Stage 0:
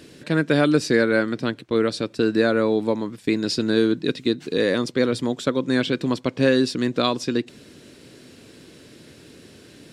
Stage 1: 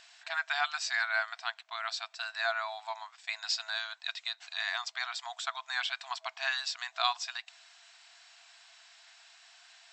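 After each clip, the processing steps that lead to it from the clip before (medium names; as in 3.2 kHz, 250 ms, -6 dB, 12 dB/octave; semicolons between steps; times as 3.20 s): FFT band-pass 650–8100 Hz; trim -4.5 dB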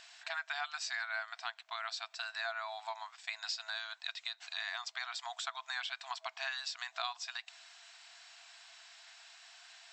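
compression 3:1, threshold -39 dBFS, peak gain reduction 12 dB; trim +1 dB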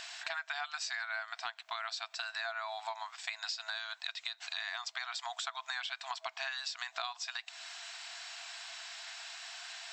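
compression 2.5:1, threshold -51 dBFS, peak gain reduction 12.5 dB; trim +10.5 dB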